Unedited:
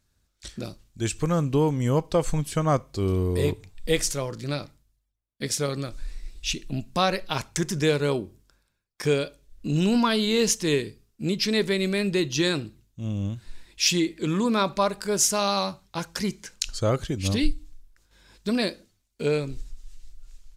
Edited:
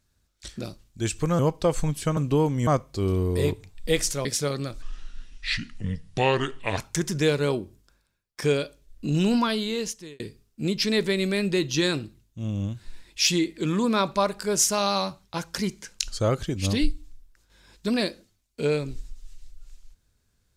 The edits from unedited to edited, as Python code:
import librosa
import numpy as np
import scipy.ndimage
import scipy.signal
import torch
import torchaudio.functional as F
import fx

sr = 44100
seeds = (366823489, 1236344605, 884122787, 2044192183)

y = fx.edit(x, sr, fx.move(start_s=1.39, length_s=0.5, to_s=2.67),
    fx.cut(start_s=4.25, length_s=1.18),
    fx.speed_span(start_s=6.0, length_s=1.39, speed=0.71),
    fx.fade_out_span(start_s=9.89, length_s=0.92), tone=tone)